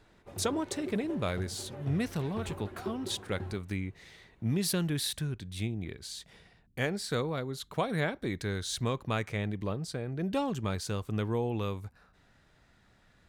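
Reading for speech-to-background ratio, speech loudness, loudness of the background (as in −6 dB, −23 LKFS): 10.0 dB, −34.0 LKFS, −44.0 LKFS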